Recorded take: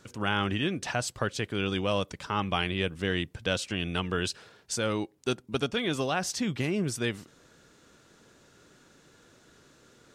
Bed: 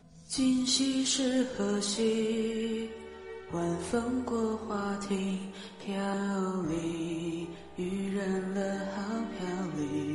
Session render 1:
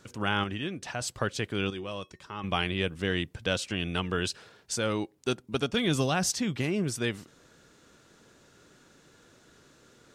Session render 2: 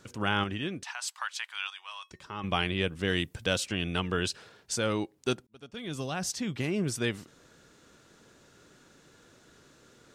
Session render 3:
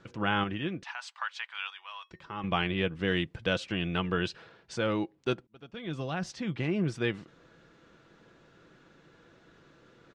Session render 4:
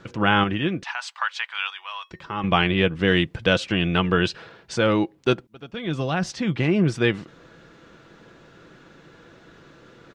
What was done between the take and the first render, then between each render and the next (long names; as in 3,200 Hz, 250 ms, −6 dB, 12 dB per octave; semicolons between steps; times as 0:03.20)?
0:00.44–0:01.01: clip gain −5 dB; 0:01.70–0:02.44: tuned comb filter 370 Hz, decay 0.15 s, harmonics odd, mix 70%; 0:05.74–0:06.32: bass and treble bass +8 dB, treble +6 dB
0:00.83–0:02.11: elliptic high-pass filter 890 Hz, stop band 80 dB; 0:03.07–0:03.65: high-shelf EQ 5,500 Hz → 11,000 Hz +11.5 dB; 0:05.47–0:06.91: fade in
low-pass filter 3,100 Hz 12 dB per octave; comb filter 6 ms, depth 30%
level +9.5 dB